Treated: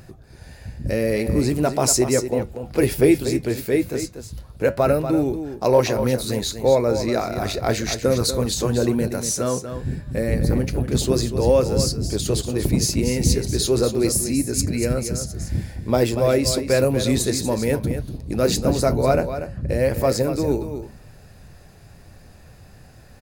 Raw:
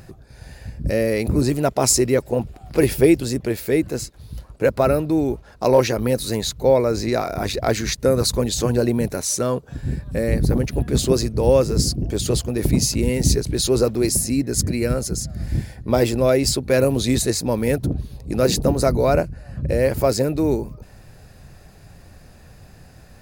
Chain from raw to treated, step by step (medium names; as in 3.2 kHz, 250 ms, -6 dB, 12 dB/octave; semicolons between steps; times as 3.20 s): flange 1 Hz, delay 7.9 ms, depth 3.6 ms, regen -73%; on a send: delay 239 ms -9.5 dB; on the sum: trim +3 dB